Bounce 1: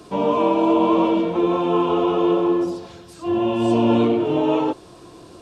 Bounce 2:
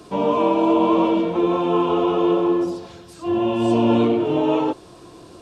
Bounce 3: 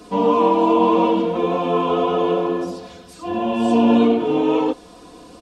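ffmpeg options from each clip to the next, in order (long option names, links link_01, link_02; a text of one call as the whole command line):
ffmpeg -i in.wav -af anull out.wav
ffmpeg -i in.wav -af "aecho=1:1:4.1:0.77" out.wav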